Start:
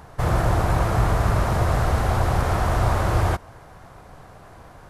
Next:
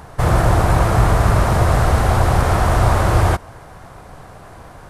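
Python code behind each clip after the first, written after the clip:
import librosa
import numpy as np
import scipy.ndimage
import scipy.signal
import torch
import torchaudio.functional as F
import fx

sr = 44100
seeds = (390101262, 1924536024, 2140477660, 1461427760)

y = fx.peak_eq(x, sr, hz=8900.0, db=3.5, octaves=0.35)
y = y * 10.0 ** (6.0 / 20.0)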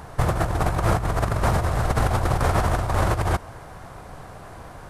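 y = fx.over_compress(x, sr, threshold_db=-16.0, ratio=-0.5)
y = y * 10.0 ** (-4.5 / 20.0)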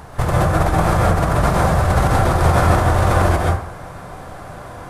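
y = fx.rev_plate(x, sr, seeds[0], rt60_s=0.54, hf_ratio=0.6, predelay_ms=115, drr_db=-3.0)
y = y * 10.0 ** (2.0 / 20.0)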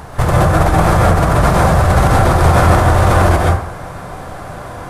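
y = 10.0 ** (-6.0 / 20.0) * np.tanh(x / 10.0 ** (-6.0 / 20.0))
y = y * 10.0 ** (5.5 / 20.0)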